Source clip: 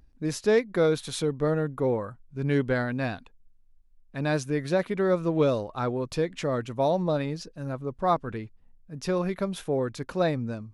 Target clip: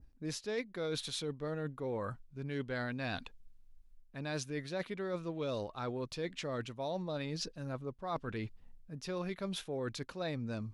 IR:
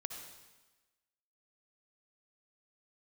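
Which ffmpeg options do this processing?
-af "adynamicequalizer=threshold=0.00355:dfrequency=3800:dqfactor=0.73:tfrequency=3800:tqfactor=0.73:attack=5:release=100:ratio=0.375:range=4:mode=boostabove:tftype=bell,areverse,acompressor=threshold=-38dB:ratio=5,areverse,volume=1dB"

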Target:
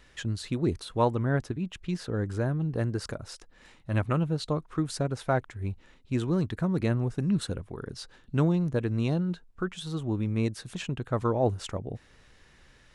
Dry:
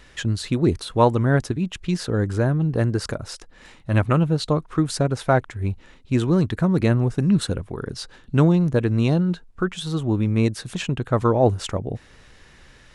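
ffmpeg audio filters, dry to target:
-filter_complex "[0:a]asplit=3[a][b][c];[a]afade=t=out:st=1.09:d=0.02[d];[b]adynamicequalizer=threshold=0.00562:dfrequency=3900:dqfactor=0.7:tfrequency=3900:tqfactor=0.7:attack=5:release=100:ratio=0.375:range=3:mode=cutabove:tftype=highshelf,afade=t=in:st=1.09:d=0.02,afade=t=out:st=2.25:d=0.02[e];[c]afade=t=in:st=2.25:d=0.02[f];[d][e][f]amix=inputs=3:normalize=0,volume=-8dB"

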